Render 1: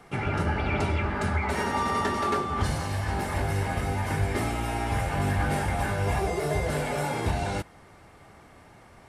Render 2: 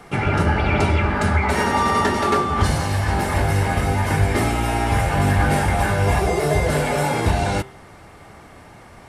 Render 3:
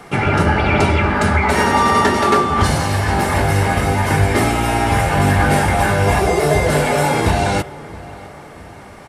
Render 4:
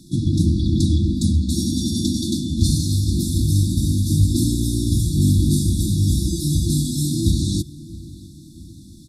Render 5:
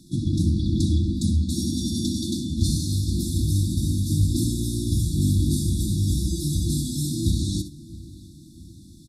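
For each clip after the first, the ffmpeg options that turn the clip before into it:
-af "bandreject=f=130.2:t=h:w=4,bandreject=f=260.4:t=h:w=4,bandreject=f=390.6:t=h:w=4,bandreject=f=520.8:t=h:w=4,bandreject=f=651:t=h:w=4,bandreject=f=781.2:t=h:w=4,bandreject=f=911.4:t=h:w=4,bandreject=f=1.0416k:t=h:w=4,bandreject=f=1.1718k:t=h:w=4,bandreject=f=1.302k:t=h:w=4,bandreject=f=1.4322k:t=h:w=4,bandreject=f=1.5624k:t=h:w=4,bandreject=f=1.6926k:t=h:w=4,bandreject=f=1.8228k:t=h:w=4,bandreject=f=1.953k:t=h:w=4,bandreject=f=2.0832k:t=h:w=4,bandreject=f=2.2134k:t=h:w=4,bandreject=f=2.3436k:t=h:w=4,bandreject=f=2.4738k:t=h:w=4,bandreject=f=2.604k:t=h:w=4,bandreject=f=2.7342k:t=h:w=4,bandreject=f=2.8644k:t=h:w=4,bandreject=f=2.9946k:t=h:w=4,bandreject=f=3.1248k:t=h:w=4,bandreject=f=3.255k:t=h:w=4,bandreject=f=3.3852k:t=h:w=4,bandreject=f=3.5154k:t=h:w=4,bandreject=f=3.6456k:t=h:w=4,volume=8.5dB"
-filter_complex "[0:a]lowshelf=f=70:g=-8,asplit=2[a][b];[b]adelay=668,lowpass=f=2k:p=1,volume=-19dB,asplit=2[c][d];[d]adelay=668,lowpass=f=2k:p=1,volume=0.49,asplit=2[e][f];[f]adelay=668,lowpass=f=2k:p=1,volume=0.49,asplit=2[g][h];[h]adelay=668,lowpass=f=2k:p=1,volume=0.49[i];[a][c][e][g][i]amix=inputs=5:normalize=0,volume=5dB"
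-af "afftfilt=real='re*(1-between(b*sr/4096,350,3400))':imag='im*(1-between(b*sr/4096,350,3400))':win_size=4096:overlap=0.75"
-af "aecho=1:1:63|77:0.251|0.126,volume=-4.5dB"

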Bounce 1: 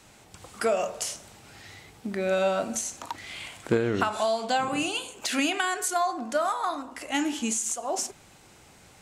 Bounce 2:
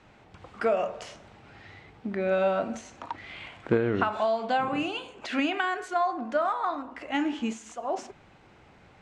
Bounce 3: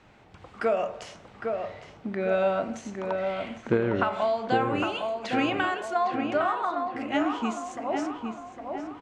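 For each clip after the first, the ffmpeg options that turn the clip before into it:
-af "lowpass=2.5k"
-filter_complex "[0:a]asplit=2[a][b];[b]adelay=808,lowpass=f=2k:p=1,volume=-4.5dB,asplit=2[c][d];[d]adelay=808,lowpass=f=2k:p=1,volume=0.51,asplit=2[e][f];[f]adelay=808,lowpass=f=2k:p=1,volume=0.51,asplit=2[g][h];[h]adelay=808,lowpass=f=2k:p=1,volume=0.51,asplit=2[i][j];[j]adelay=808,lowpass=f=2k:p=1,volume=0.51,asplit=2[k][l];[l]adelay=808,lowpass=f=2k:p=1,volume=0.51,asplit=2[m][n];[n]adelay=808,lowpass=f=2k:p=1,volume=0.51[o];[a][c][e][g][i][k][m][o]amix=inputs=8:normalize=0"

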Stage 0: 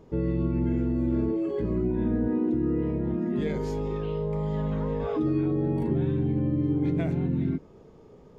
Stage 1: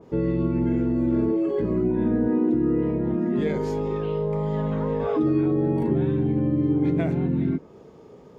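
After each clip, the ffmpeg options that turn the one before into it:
-af "highpass=f=160:p=1,adynamicequalizer=threshold=0.00251:dfrequency=2300:dqfactor=0.7:tfrequency=2300:tqfactor=0.7:attack=5:release=100:ratio=0.375:range=2:mode=cutabove:tftype=highshelf,volume=5.5dB"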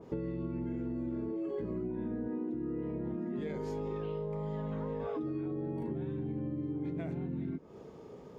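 -af "acompressor=threshold=-31dB:ratio=10,volume=-2.5dB"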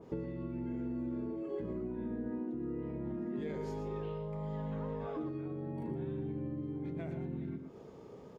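-af "aecho=1:1:117:0.376,volume=-2dB"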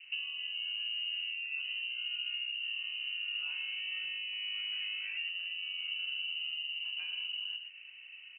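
-af "lowpass=f=2.6k:t=q:w=0.5098,lowpass=f=2.6k:t=q:w=0.6013,lowpass=f=2.6k:t=q:w=0.9,lowpass=f=2.6k:t=q:w=2.563,afreqshift=-3100,equalizer=f=125:t=o:w=1:g=7,equalizer=f=250:t=o:w=1:g=-7,equalizer=f=500:t=o:w=1:g=-4,equalizer=f=1k:t=o:w=1:g=-7,volume=1dB"

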